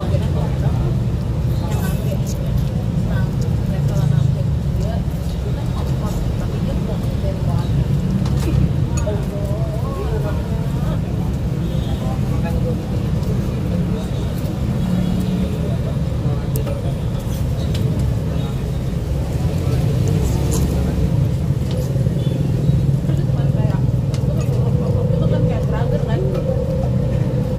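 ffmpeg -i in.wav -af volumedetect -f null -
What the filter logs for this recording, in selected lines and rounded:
mean_volume: -18.0 dB
max_volume: -2.9 dB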